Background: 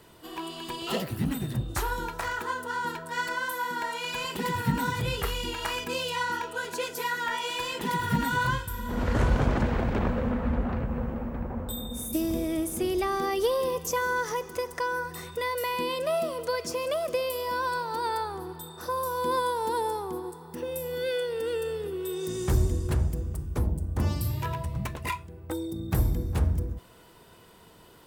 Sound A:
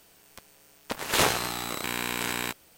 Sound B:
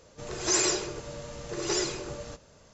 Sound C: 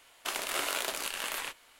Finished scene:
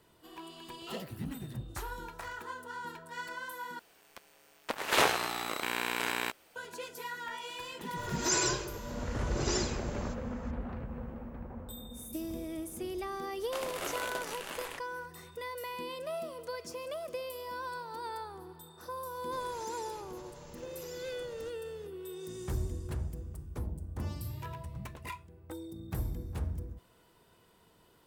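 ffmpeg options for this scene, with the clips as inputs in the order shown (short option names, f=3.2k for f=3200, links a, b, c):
-filter_complex "[2:a]asplit=2[a][b];[0:a]volume=-10.5dB[c];[1:a]bass=f=250:g=-10,treble=f=4k:g=-7[d];[3:a]tiltshelf=f=910:g=5.5[e];[b]acompressor=threshold=-39dB:ratio=6:attack=3.2:release=140:knee=1:detection=peak[f];[c]asplit=2[g][h];[g]atrim=end=3.794[i];[d]atrim=end=2.77,asetpts=PTS-STARTPTS,volume=-1dB[j];[h]atrim=start=6.556[k];[a]atrim=end=2.73,asetpts=PTS-STARTPTS,volume=-4.5dB,afade=t=in:d=0.004:c=hsin,afade=t=out:st=2.726:d=0.004:c=hsin,adelay=343098S[l];[e]atrim=end=1.79,asetpts=PTS-STARTPTS,volume=-3.5dB,afade=t=in:d=0.004:c=hsin,afade=t=out:st=1.786:d=0.004:c=hsin,adelay=13270[m];[f]atrim=end=2.73,asetpts=PTS-STARTPTS,volume=-7.5dB,afade=t=in:d=0.004:c=hsin,afade=t=out:st=2.726:d=0.004:c=hsin,adelay=19140[n];[i][j]acrossfade=d=0.004:c1=hsin:c2=hsin[o];[o][k]acrossfade=d=0.004:c1=hsin:c2=hsin[p];[p][l][m][n]amix=inputs=4:normalize=0"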